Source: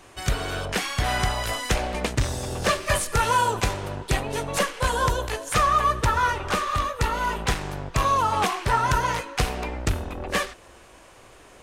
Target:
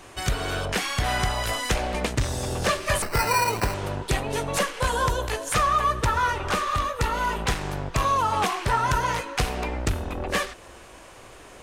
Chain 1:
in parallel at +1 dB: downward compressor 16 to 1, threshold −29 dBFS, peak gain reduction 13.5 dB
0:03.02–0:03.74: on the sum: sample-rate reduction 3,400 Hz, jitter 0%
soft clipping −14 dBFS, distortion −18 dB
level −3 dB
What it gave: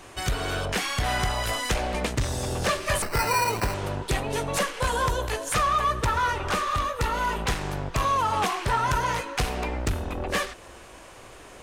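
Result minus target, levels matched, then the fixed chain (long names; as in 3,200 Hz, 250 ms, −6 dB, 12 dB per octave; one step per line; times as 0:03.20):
soft clipping: distortion +11 dB
in parallel at +1 dB: downward compressor 16 to 1, threshold −29 dBFS, peak gain reduction 13.5 dB
0:03.02–0:03.74: on the sum: sample-rate reduction 3,400 Hz, jitter 0%
soft clipping −7.5 dBFS, distortion −28 dB
level −3 dB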